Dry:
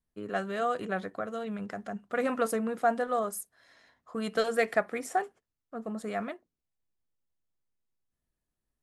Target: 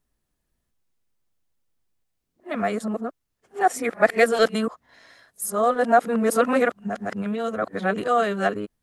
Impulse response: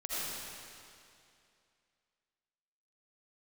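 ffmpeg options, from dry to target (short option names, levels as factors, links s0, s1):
-af "areverse,volume=2.82"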